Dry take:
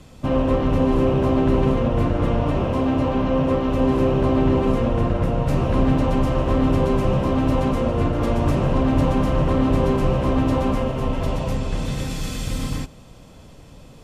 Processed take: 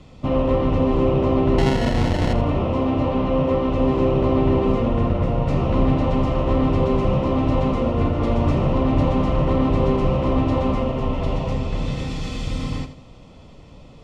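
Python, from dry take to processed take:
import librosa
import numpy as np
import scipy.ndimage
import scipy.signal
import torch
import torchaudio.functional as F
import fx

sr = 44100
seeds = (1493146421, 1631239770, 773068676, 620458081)

y = fx.sample_hold(x, sr, seeds[0], rate_hz=1200.0, jitter_pct=0, at=(1.58, 2.33))
y = scipy.signal.sosfilt(scipy.signal.butter(2, 4700.0, 'lowpass', fs=sr, output='sos'), y)
y = fx.notch(y, sr, hz=1600.0, q=5.8)
y = fx.echo_feedback(y, sr, ms=82, feedback_pct=34, wet_db=-12)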